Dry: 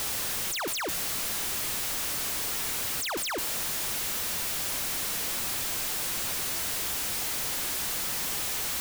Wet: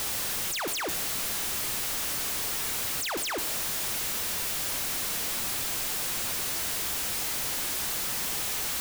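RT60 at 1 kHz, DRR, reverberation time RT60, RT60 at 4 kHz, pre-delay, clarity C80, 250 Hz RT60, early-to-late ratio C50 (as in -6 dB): 1.0 s, 12.0 dB, 1.0 s, 1.0 s, 14 ms, 16.5 dB, 1.0 s, 14.5 dB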